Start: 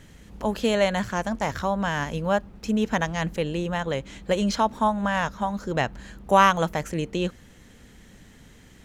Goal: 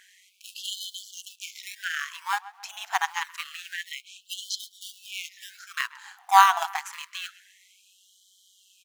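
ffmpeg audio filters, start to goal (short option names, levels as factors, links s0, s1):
-filter_complex "[0:a]asplit=2[s0][s1];[s1]acrusher=samples=27:mix=1:aa=0.000001:lfo=1:lforange=27:lforate=0.29,volume=0.299[s2];[s0][s2]amix=inputs=2:normalize=0,asplit=2[s3][s4];[s4]adelay=133,lowpass=f=2500:p=1,volume=0.119,asplit=2[s5][s6];[s6]adelay=133,lowpass=f=2500:p=1,volume=0.49,asplit=2[s7][s8];[s8]adelay=133,lowpass=f=2500:p=1,volume=0.49,asplit=2[s9][s10];[s10]adelay=133,lowpass=f=2500:p=1,volume=0.49[s11];[s3][s5][s7][s9][s11]amix=inputs=5:normalize=0,tremolo=f=190:d=0.571,afftfilt=real='re*gte(b*sr/1024,670*pow(3000/670,0.5+0.5*sin(2*PI*0.27*pts/sr)))':imag='im*gte(b*sr/1024,670*pow(3000/670,0.5+0.5*sin(2*PI*0.27*pts/sr)))':win_size=1024:overlap=0.75,volume=1.41"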